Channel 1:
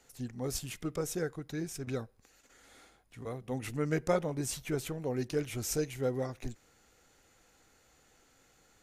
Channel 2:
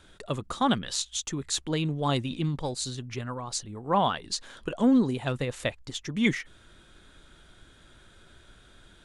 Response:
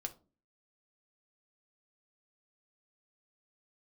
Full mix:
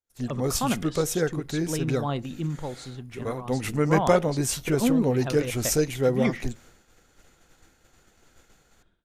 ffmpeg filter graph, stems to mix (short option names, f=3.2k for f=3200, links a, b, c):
-filter_complex "[0:a]volume=-2.5dB,asplit=2[a][b];[b]volume=-13dB[c];[1:a]lowpass=f=1.6k:p=1,volume=-14.5dB,asplit=2[d][e];[e]volume=-6.5dB[f];[2:a]atrim=start_sample=2205[g];[c][f]amix=inputs=2:normalize=0[h];[h][g]afir=irnorm=-1:irlink=0[i];[a][d][i]amix=inputs=3:normalize=0,dynaudnorm=f=120:g=3:m=10.5dB,agate=range=-33dB:threshold=-46dB:ratio=3:detection=peak"